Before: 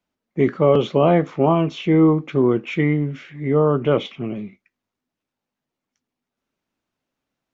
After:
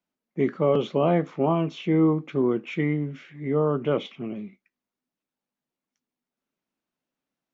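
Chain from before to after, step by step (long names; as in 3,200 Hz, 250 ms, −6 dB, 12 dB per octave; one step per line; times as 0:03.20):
low shelf with overshoot 130 Hz −6 dB, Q 1.5
level −6.5 dB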